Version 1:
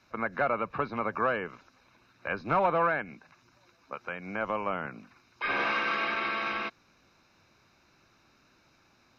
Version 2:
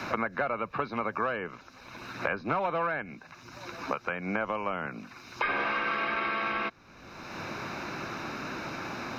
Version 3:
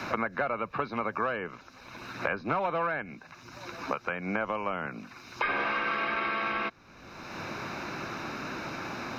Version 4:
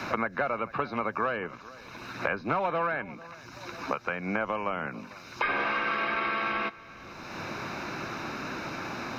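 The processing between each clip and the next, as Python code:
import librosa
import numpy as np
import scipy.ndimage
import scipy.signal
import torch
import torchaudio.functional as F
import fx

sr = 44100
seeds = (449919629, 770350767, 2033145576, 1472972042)

y1 = fx.band_squash(x, sr, depth_pct=100)
y2 = y1
y3 = y2 + 10.0 ** (-19.5 / 20.0) * np.pad(y2, (int(447 * sr / 1000.0), 0))[:len(y2)]
y3 = y3 * librosa.db_to_amplitude(1.0)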